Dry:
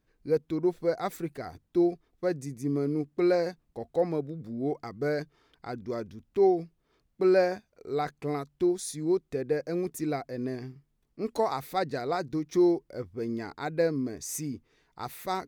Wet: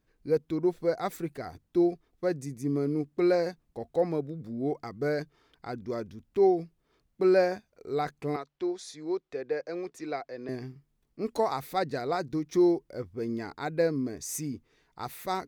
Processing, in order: 8.36–10.49 three-band isolator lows -15 dB, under 380 Hz, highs -22 dB, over 6200 Hz

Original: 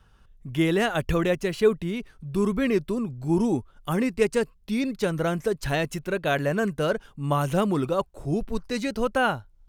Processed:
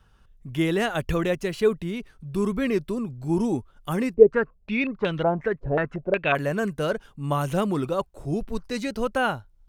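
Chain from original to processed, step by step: 4.14–6.35 stepped low-pass 5.5 Hz 490–3300 Hz; gain -1 dB

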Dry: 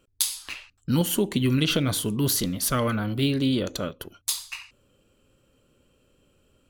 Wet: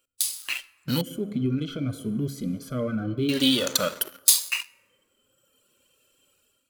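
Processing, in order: reverb removal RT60 1.3 s; de-hum 68.21 Hz, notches 4; reverb RT60 1.7 s, pre-delay 37 ms, DRR 18 dB; compressor 5:1, threshold -28 dBFS, peak gain reduction 9.5 dB; sample leveller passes 2; 1.01–3.29 running mean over 48 samples; harmonic-percussive split percussive -11 dB; AGC gain up to 10 dB; tilt +3.5 dB/oct; gain -2 dB

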